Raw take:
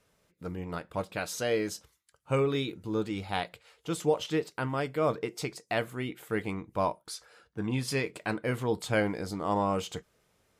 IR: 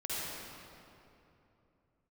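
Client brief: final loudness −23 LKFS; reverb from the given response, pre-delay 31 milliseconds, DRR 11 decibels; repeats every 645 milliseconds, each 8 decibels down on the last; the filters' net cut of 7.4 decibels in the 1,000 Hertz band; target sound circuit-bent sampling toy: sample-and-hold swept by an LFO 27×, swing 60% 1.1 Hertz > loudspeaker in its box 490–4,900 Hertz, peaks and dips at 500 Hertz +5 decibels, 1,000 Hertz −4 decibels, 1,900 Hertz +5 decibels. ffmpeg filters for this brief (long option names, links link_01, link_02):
-filter_complex "[0:a]equalizer=frequency=1000:width_type=o:gain=-8,aecho=1:1:645|1290|1935|2580|3225:0.398|0.159|0.0637|0.0255|0.0102,asplit=2[link_01][link_02];[1:a]atrim=start_sample=2205,adelay=31[link_03];[link_02][link_03]afir=irnorm=-1:irlink=0,volume=-15.5dB[link_04];[link_01][link_04]amix=inputs=2:normalize=0,acrusher=samples=27:mix=1:aa=0.000001:lfo=1:lforange=16.2:lforate=1.1,highpass=490,equalizer=frequency=500:width_type=q:width=4:gain=5,equalizer=frequency=1000:width_type=q:width=4:gain=-4,equalizer=frequency=1900:width_type=q:width=4:gain=5,lowpass=frequency=4900:width=0.5412,lowpass=frequency=4900:width=1.3066,volume=12dB"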